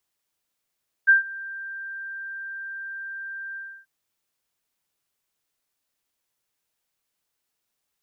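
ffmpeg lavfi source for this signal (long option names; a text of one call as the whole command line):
ffmpeg -f lavfi -i "aevalsrc='0.316*sin(2*PI*1580*t)':duration=2.786:sample_rate=44100,afade=type=in:duration=0.023,afade=type=out:start_time=0.023:duration=0.132:silence=0.0794,afade=type=out:start_time=2.49:duration=0.296" out.wav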